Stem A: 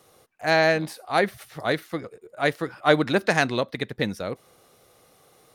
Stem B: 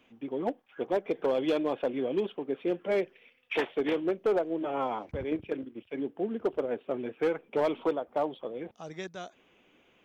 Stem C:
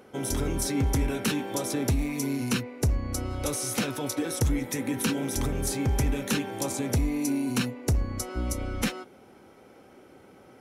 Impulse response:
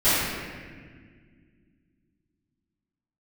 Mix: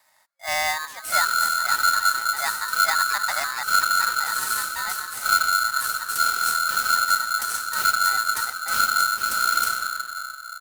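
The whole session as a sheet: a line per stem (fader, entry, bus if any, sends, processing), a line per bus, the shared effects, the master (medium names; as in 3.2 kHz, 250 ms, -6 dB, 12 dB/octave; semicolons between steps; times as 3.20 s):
-7.0 dB, 0.00 s, no send, FFT band-reject 860–3000 Hz
-13.0 dB, 0.50 s, no send, none
+2.5 dB, 0.80 s, send -16 dB, inverse Chebyshev band-stop 450–1800 Hz, stop band 80 dB; modulation noise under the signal 11 dB; auto duck -12 dB, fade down 1.45 s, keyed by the first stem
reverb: on, RT60 1.8 s, pre-delay 4 ms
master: gain riding within 5 dB 0.5 s; polarity switched at an audio rate 1.4 kHz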